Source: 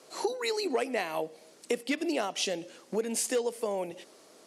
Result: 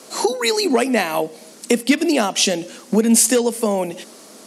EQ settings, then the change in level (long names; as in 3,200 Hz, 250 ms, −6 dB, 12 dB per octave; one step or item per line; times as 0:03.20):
parametric band 220 Hz +14.5 dB 0.62 octaves
parametric band 1,100 Hz +4 dB 2.2 octaves
high-shelf EQ 4,400 Hz +11 dB
+8.0 dB